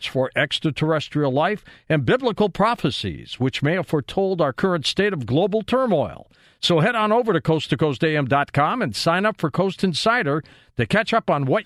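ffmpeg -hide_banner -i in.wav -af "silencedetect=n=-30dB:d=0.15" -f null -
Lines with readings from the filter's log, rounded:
silence_start: 1.57
silence_end: 1.90 | silence_duration: 0.33
silence_start: 6.20
silence_end: 6.63 | silence_duration: 0.43
silence_start: 10.40
silence_end: 10.79 | silence_duration: 0.38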